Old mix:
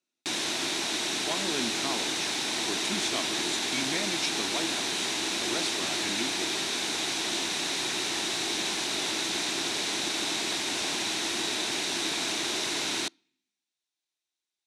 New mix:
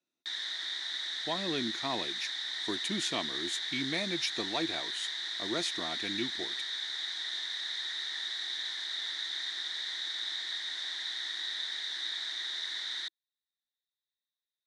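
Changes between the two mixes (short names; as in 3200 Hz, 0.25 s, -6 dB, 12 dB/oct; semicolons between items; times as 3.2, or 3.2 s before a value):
background: add double band-pass 2600 Hz, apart 0.97 oct; reverb: off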